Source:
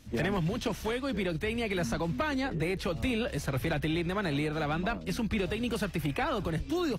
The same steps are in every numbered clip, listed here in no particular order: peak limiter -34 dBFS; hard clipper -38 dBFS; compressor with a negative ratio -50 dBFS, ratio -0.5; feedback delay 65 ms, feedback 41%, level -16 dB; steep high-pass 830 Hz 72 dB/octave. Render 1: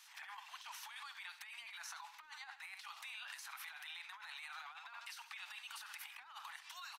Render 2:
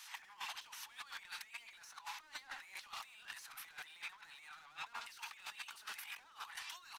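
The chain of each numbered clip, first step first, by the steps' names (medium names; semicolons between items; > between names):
feedback delay > peak limiter > steep high-pass > hard clipper > compressor with a negative ratio; steep high-pass > hard clipper > feedback delay > compressor with a negative ratio > peak limiter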